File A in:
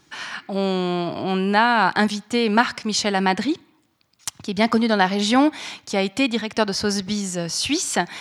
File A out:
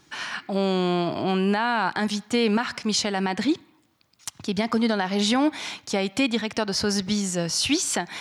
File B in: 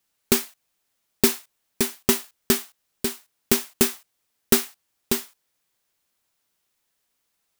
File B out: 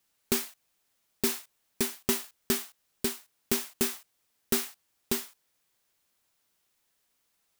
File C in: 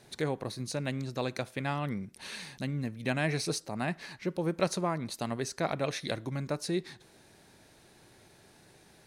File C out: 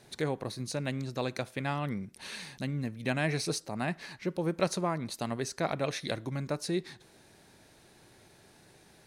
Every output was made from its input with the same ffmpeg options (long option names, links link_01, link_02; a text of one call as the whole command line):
ffmpeg -i in.wav -af "alimiter=limit=-12.5dB:level=0:latency=1:release=155" out.wav